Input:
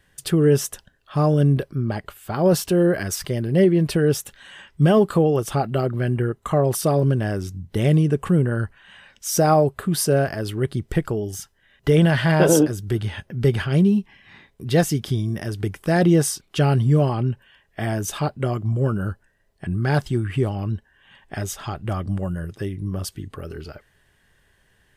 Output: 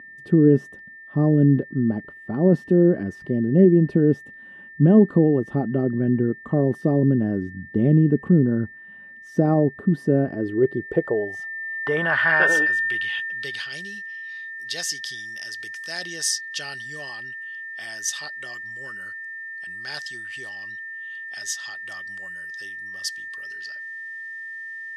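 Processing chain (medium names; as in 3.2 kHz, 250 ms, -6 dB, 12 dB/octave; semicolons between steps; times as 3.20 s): whistle 1.8 kHz -24 dBFS; band-pass sweep 250 Hz -> 5.3 kHz, 10.22–13.79 s; trim +8 dB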